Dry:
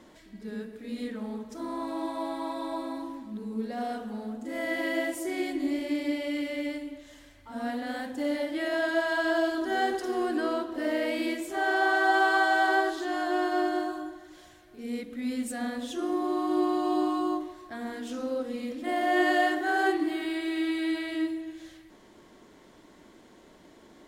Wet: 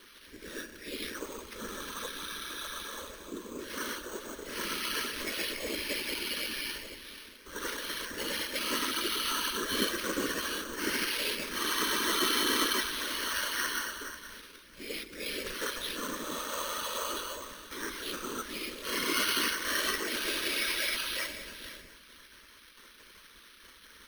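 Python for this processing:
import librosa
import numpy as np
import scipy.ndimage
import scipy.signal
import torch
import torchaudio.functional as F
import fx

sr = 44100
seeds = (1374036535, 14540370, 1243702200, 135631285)

p1 = fx.spec_gate(x, sr, threshold_db=-15, keep='weak')
p2 = fx.high_shelf(p1, sr, hz=4600.0, db=-7.5)
p3 = fx.notch(p2, sr, hz=2000.0, q=10.0)
p4 = np.clip(p3, -10.0 ** (-37.0 / 20.0), 10.0 ** (-37.0 / 20.0))
p5 = p3 + F.gain(torch.from_numpy(p4), -3.5).numpy()
p6 = fx.whisperise(p5, sr, seeds[0])
p7 = np.repeat(p6[::6], 6)[:len(p6)]
p8 = fx.fixed_phaser(p7, sr, hz=310.0, stages=4)
p9 = p8 + 10.0 ** (-14.5 / 20.0) * np.pad(p8, (int(483 * sr / 1000.0), 0))[:len(p8)]
y = F.gain(torch.from_numpy(p9), 8.5).numpy()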